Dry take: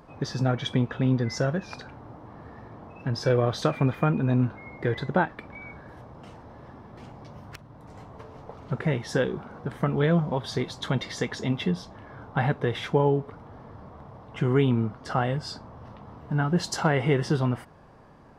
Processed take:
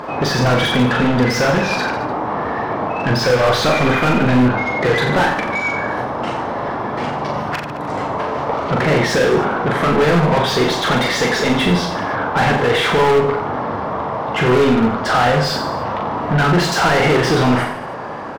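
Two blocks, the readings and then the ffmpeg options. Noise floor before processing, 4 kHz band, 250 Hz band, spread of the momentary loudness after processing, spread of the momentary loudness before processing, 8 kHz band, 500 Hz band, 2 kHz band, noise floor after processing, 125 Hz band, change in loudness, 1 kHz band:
-49 dBFS, +15.5 dB, +10.0 dB, 8 LU, 22 LU, +13.5 dB, +12.5 dB, +16.5 dB, -25 dBFS, +6.5 dB, +10.0 dB, +16.5 dB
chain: -filter_complex "[0:a]asplit=2[s0][s1];[s1]highpass=f=720:p=1,volume=56.2,asoftclip=type=tanh:threshold=0.398[s2];[s0][s2]amix=inputs=2:normalize=0,lowpass=f=2000:p=1,volume=0.501,aecho=1:1:40|88|145.6|214.7|297.7:0.631|0.398|0.251|0.158|0.1,aeval=exprs='0.422*(abs(mod(val(0)/0.422+3,4)-2)-1)':c=same"

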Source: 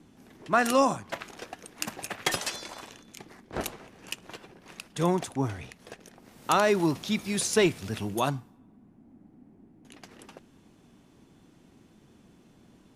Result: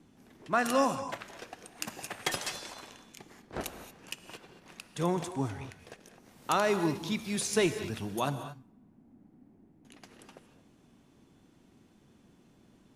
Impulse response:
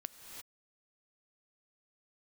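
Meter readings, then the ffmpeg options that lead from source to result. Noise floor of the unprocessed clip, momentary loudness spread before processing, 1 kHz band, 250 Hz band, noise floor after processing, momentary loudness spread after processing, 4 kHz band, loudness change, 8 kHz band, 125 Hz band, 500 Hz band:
-59 dBFS, 23 LU, -4.0 dB, -4.0 dB, -63 dBFS, 22 LU, -4.0 dB, -4.0 dB, -4.0 dB, -4.0 dB, -4.0 dB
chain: -filter_complex "[1:a]atrim=start_sample=2205,afade=t=out:st=0.29:d=0.01,atrim=end_sample=13230[s0];[0:a][s0]afir=irnorm=-1:irlink=0"

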